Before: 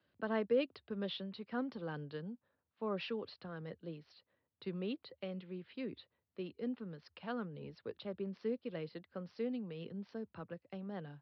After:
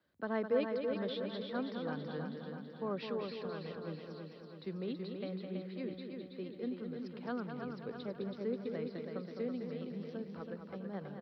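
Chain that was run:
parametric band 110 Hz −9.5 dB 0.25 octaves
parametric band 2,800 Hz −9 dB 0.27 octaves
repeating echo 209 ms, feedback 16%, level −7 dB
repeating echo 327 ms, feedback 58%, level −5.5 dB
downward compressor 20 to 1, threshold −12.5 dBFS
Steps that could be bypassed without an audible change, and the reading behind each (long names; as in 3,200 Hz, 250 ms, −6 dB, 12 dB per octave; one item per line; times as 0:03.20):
downward compressor, threshold −12.5 dBFS: peak of its input −22.0 dBFS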